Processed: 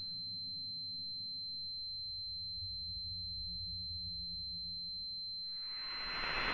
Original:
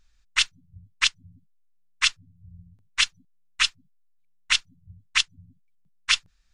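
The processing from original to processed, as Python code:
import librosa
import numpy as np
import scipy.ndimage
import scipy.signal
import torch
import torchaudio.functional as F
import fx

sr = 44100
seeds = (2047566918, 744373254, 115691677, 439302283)

y = fx.env_flanger(x, sr, rest_ms=6.7, full_db=-19.5)
y = fx.paulstretch(y, sr, seeds[0], factor=15.0, window_s=0.25, from_s=4.68)
y = fx.pwm(y, sr, carrier_hz=4100.0)
y = F.gain(torch.from_numpy(y), 2.5).numpy()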